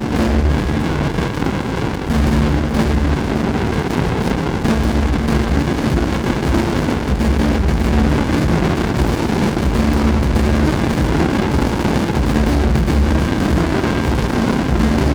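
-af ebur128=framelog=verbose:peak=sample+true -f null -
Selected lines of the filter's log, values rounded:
Integrated loudness:
  I:         -16.8 LUFS
  Threshold: -26.8 LUFS
Loudness range:
  LRA:         1.5 LU
  Threshold: -36.7 LUFS
  LRA low:   -17.6 LUFS
  LRA high:  -16.1 LUFS
Sample peak:
  Peak:       -2.0 dBFS
True peak:
  Peak:       -2.0 dBFS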